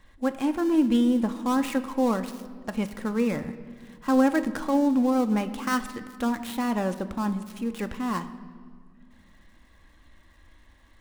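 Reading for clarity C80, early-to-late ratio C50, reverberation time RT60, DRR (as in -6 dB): 14.5 dB, 13.0 dB, 1.9 s, 8.5 dB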